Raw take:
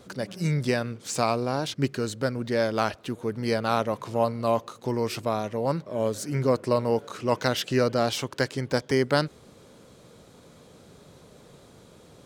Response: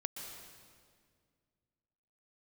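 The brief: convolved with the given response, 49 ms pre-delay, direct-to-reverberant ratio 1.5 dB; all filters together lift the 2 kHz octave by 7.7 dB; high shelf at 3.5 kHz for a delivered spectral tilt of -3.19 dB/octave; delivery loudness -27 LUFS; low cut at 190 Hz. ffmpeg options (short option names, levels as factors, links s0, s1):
-filter_complex "[0:a]highpass=190,equalizer=f=2000:t=o:g=8,highshelf=f=3500:g=7.5,asplit=2[s0][s1];[1:a]atrim=start_sample=2205,adelay=49[s2];[s1][s2]afir=irnorm=-1:irlink=0,volume=0.891[s3];[s0][s3]amix=inputs=2:normalize=0,volume=0.631"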